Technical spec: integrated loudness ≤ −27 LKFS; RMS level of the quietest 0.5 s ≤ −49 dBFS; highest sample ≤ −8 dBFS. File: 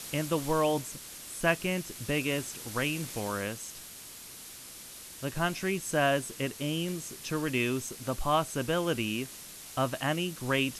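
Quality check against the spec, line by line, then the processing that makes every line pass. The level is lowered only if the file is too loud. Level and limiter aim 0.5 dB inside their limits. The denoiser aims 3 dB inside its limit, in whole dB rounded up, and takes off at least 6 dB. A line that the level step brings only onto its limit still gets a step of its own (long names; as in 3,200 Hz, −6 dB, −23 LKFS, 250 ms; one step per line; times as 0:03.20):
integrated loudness −31.5 LKFS: in spec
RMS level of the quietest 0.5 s −47 dBFS: out of spec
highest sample −12.5 dBFS: in spec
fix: broadband denoise 6 dB, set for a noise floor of −47 dBFS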